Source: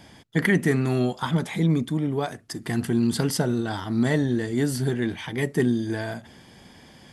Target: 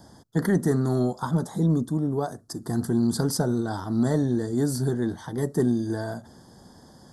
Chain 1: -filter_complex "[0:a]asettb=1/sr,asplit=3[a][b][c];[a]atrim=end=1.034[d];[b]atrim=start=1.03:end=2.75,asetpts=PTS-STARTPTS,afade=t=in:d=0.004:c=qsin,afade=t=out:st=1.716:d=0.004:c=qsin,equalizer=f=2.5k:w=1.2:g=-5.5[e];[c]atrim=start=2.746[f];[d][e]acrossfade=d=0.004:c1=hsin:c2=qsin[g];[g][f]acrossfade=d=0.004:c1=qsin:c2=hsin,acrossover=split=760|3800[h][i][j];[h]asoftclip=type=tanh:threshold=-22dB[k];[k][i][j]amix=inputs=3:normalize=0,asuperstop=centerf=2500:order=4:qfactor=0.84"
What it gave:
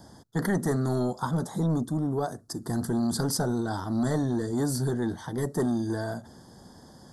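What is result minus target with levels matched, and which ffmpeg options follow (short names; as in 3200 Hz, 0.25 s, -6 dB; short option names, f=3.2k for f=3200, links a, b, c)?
soft clip: distortion +16 dB
-filter_complex "[0:a]asettb=1/sr,asplit=3[a][b][c];[a]atrim=end=1.034[d];[b]atrim=start=1.03:end=2.75,asetpts=PTS-STARTPTS,afade=t=in:d=0.004:c=qsin,afade=t=out:st=1.716:d=0.004:c=qsin,equalizer=f=2.5k:w=1.2:g=-5.5[e];[c]atrim=start=2.746[f];[d][e]acrossfade=d=0.004:c1=hsin:c2=qsin[g];[g][f]acrossfade=d=0.004:c1=qsin:c2=hsin,acrossover=split=760|3800[h][i][j];[h]asoftclip=type=tanh:threshold=-10.5dB[k];[k][i][j]amix=inputs=3:normalize=0,asuperstop=centerf=2500:order=4:qfactor=0.84"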